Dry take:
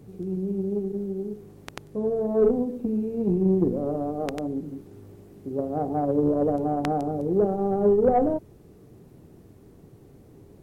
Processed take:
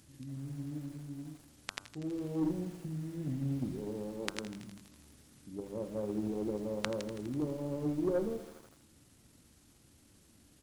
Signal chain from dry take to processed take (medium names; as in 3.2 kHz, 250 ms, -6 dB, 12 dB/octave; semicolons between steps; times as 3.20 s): tilt shelf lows -10 dB, about 1.4 kHz; pitch shift -5.5 st; de-hum 97.54 Hz, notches 16; bit-crushed delay 82 ms, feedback 80%, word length 7-bit, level -14.5 dB; trim -4.5 dB